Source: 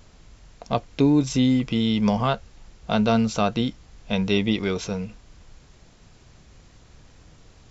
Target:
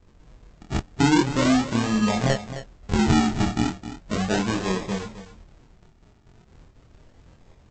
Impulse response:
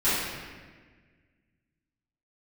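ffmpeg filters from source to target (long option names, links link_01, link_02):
-af "agate=range=-6dB:threshold=-50dB:ratio=16:detection=peak,aresample=16000,acrusher=samples=21:mix=1:aa=0.000001:lfo=1:lforange=21:lforate=0.37,aresample=44100,flanger=delay=22.5:depth=4.3:speed=0.95,aecho=1:1:263:0.237,volume=2.5dB"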